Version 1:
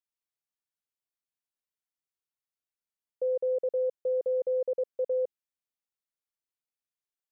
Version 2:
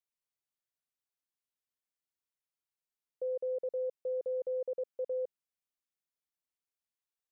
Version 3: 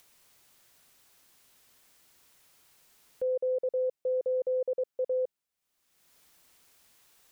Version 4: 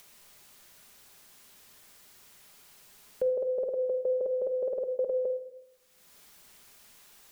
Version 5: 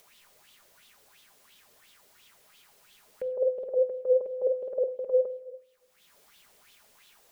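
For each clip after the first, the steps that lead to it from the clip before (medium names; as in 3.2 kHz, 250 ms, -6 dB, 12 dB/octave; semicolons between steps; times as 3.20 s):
peak limiter -27.5 dBFS, peak gain reduction 3.5 dB; trim -3 dB
upward compressor, threshold -49 dBFS; trim +5.5 dB
simulated room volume 2000 m³, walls furnished, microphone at 1.3 m; trim +6 dB
sweeping bell 2.9 Hz 470–3500 Hz +14 dB; trim -5.5 dB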